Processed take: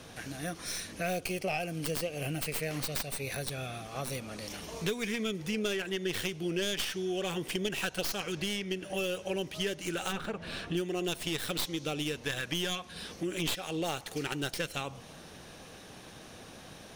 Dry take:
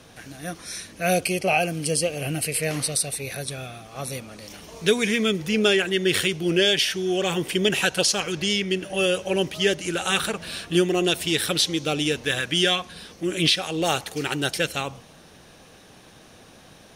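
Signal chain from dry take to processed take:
stylus tracing distortion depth 0.14 ms
0:10.11–0:10.76: low-pass filter 1,000 Hz → 2,500 Hz 6 dB per octave
downward compressor 3 to 1, threshold −34 dBFS, peak gain reduction 14.5 dB

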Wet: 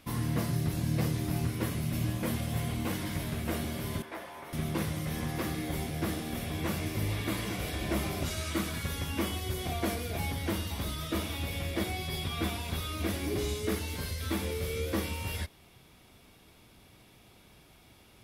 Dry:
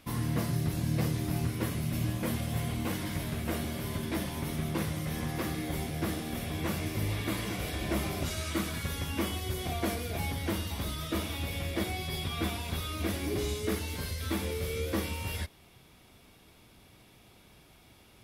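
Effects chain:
0:04.02–0:04.53: three-way crossover with the lows and the highs turned down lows −23 dB, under 470 Hz, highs −13 dB, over 2,100 Hz

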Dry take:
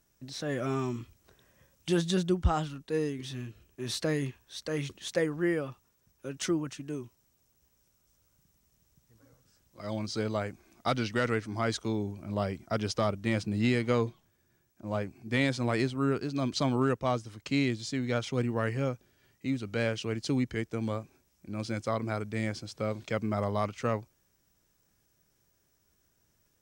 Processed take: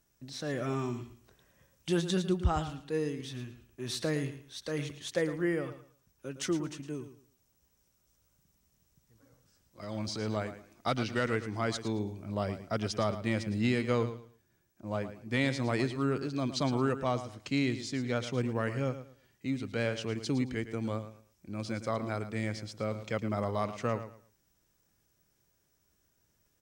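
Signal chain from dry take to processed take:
0:09.82–0:10.37: transient designer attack −7 dB, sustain +6 dB
repeating echo 111 ms, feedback 24%, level −12 dB
level −2 dB

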